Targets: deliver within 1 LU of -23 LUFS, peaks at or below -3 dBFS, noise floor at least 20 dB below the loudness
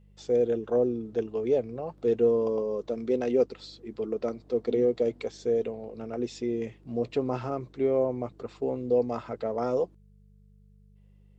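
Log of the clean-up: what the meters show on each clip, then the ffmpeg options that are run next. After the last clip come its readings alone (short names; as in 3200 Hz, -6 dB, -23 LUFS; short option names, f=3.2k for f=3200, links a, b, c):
hum 50 Hz; harmonics up to 200 Hz; hum level -54 dBFS; loudness -29.0 LUFS; peak -13.5 dBFS; loudness target -23.0 LUFS
-> -af "bandreject=f=50:t=h:w=4,bandreject=f=100:t=h:w=4,bandreject=f=150:t=h:w=4,bandreject=f=200:t=h:w=4"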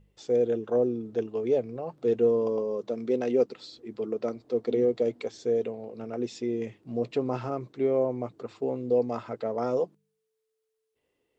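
hum none; loudness -29.0 LUFS; peak -13.5 dBFS; loudness target -23.0 LUFS
-> -af "volume=6dB"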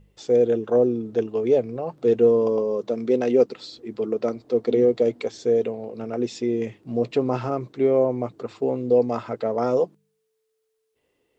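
loudness -23.0 LUFS; peak -7.5 dBFS; noise floor -74 dBFS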